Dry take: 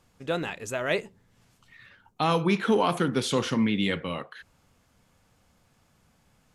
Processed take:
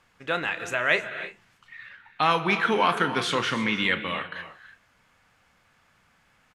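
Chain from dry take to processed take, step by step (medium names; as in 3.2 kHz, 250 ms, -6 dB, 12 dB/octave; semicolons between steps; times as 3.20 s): peaking EQ 1.8 kHz +14.5 dB 2.3 oct; doubling 33 ms -13.5 dB; gated-style reverb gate 350 ms rising, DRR 11 dB; trim -5.5 dB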